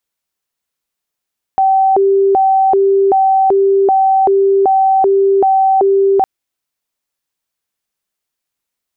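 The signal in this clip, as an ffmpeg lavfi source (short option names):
-f lavfi -i "aevalsrc='0.422*sin(2*PI*(581*t+189/1.3*(0.5-abs(mod(1.3*t,1)-0.5))))':d=4.66:s=44100"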